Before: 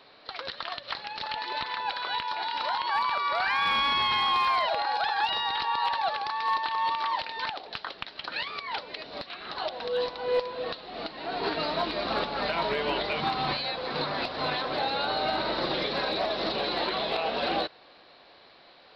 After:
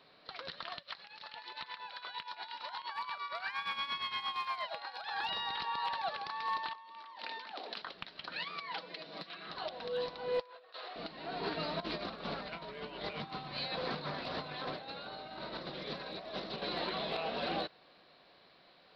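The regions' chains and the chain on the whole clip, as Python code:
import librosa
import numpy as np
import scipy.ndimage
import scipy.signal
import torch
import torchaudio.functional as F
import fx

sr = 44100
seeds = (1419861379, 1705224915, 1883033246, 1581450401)

y = fx.chain(x, sr, fx.low_shelf(hz=500.0, db=-10.0),
    fx.tremolo(hz=8.6, depth=0.73), at=(0.79, 5.11))
y = fx.chain(y, sr, fx.steep_highpass(hz=200.0, slope=96),
    fx.over_compress(threshold_db=-39.0, ratio=-1.0), at=(6.73, 7.82))
y = fx.chain(y, sr, fx.highpass(hz=160.0, slope=24),
    fx.comb(ms=6.1, depth=0.53), at=(8.39, 9.49))
y = fx.chain(y, sr, fx.highpass(hz=450.0, slope=24),
    fx.peak_eq(hz=1400.0, db=5.5, octaves=1.1),
    fx.over_compress(threshold_db=-41.0, ratio=-0.5), at=(10.4, 10.96))
y = fx.chain(y, sr, fx.over_compress(threshold_db=-33.0, ratio=-0.5),
    fx.doppler_dist(depth_ms=0.11), at=(11.8, 16.62))
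y = fx.peak_eq(y, sr, hz=170.0, db=7.5, octaves=0.68)
y = fx.notch(y, sr, hz=850.0, q=16.0)
y = y * 10.0 ** (-8.0 / 20.0)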